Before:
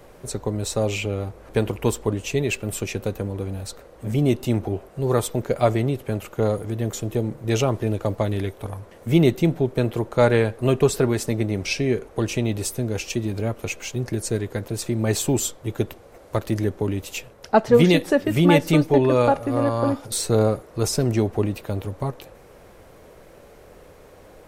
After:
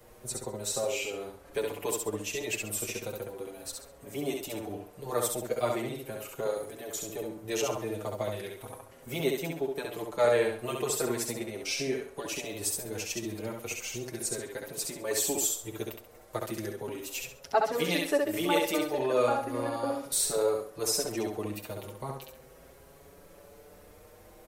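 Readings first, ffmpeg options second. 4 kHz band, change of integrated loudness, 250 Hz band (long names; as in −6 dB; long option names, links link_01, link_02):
−4.5 dB, −9.0 dB, −14.0 dB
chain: -filter_complex "[0:a]acrossover=split=320|560|7000[link_01][link_02][link_03][link_04];[link_01]acompressor=threshold=-37dB:ratio=6[link_05];[link_05][link_02][link_03][link_04]amix=inputs=4:normalize=0,highshelf=frequency=7400:gain=10.5,aecho=1:1:67|134|201|268:0.668|0.207|0.0642|0.0199,asplit=2[link_06][link_07];[link_07]adelay=6.1,afreqshift=0.37[link_08];[link_06][link_08]amix=inputs=2:normalize=1,volume=-5.5dB"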